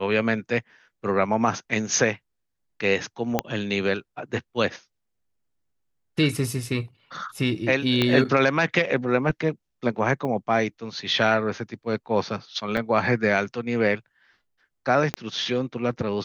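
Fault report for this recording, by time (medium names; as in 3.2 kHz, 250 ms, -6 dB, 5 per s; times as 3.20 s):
3.39 s: pop -7 dBFS
8.02 s: pop -8 dBFS
10.25 s: dropout 4.1 ms
12.77 s: dropout 3.5 ms
15.14 s: pop -10 dBFS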